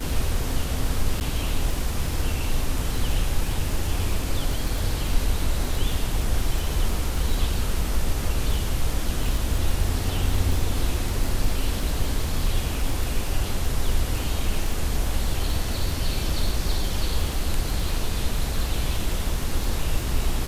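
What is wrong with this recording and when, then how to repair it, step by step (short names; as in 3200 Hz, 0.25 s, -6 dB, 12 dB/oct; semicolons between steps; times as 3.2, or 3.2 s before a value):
crackle 27/s -26 dBFS
1.2–1.21 gap 9.4 ms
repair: de-click; interpolate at 1.2, 9.4 ms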